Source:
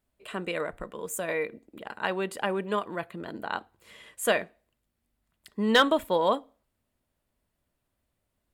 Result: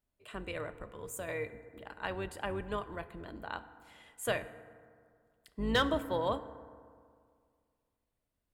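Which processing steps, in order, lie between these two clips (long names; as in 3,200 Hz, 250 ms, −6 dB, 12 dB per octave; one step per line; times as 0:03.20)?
sub-octave generator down 2 octaves, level −2 dB
feedback delay network reverb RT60 2.1 s, low-frequency decay 1.05×, high-frequency decay 0.4×, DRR 12 dB
level −8.5 dB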